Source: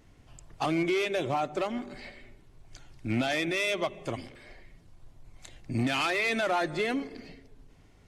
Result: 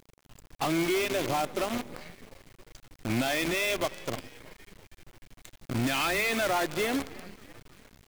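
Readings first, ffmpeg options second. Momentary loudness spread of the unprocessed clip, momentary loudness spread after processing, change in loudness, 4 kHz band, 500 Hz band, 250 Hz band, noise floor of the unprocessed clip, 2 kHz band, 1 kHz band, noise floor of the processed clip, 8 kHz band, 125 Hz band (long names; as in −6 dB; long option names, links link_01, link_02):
16 LU, 19 LU, +0.5 dB, +1.5 dB, 0.0 dB, 0.0 dB, −58 dBFS, +0.5 dB, 0.0 dB, −67 dBFS, +7.5 dB, −0.5 dB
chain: -filter_complex "[0:a]asplit=6[link_01][link_02][link_03][link_04][link_05][link_06];[link_02]adelay=324,afreqshift=-70,volume=-15dB[link_07];[link_03]adelay=648,afreqshift=-140,volume=-20.7dB[link_08];[link_04]adelay=972,afreqshift=-210,volume=-26.4dB[link_09];[link_05]adelay=1296,afreqshift=-280,volume=-32dB[link_10];[link_06]adelay=1620,afreqshift=-350,volume=-37.7dB[link_11];[link_01][link_07][link_08][link_09][link_10][link_11]amix=inputs=6:normalize=0,acrusher=bits=6:dc=4:mix=0:aa=0.000001"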